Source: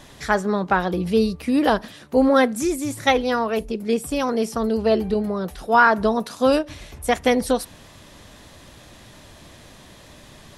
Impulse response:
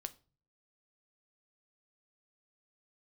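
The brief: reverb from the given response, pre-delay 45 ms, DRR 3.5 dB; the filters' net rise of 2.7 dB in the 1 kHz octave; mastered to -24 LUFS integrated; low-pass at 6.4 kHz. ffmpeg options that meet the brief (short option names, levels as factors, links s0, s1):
-filter_complex "[0:a]lowpass=6400,equalizer=f=1000:t=o:g=3.5,asplit=2[s0][s1];[1:a]atrim=start_sample=2205,adelay=45[s2];[s1][s2]afir=irnorm=-1:irlink=0,volume=0.944[s3];[s0][s3]amix=inputs=2:normalize=0,volume=0.531"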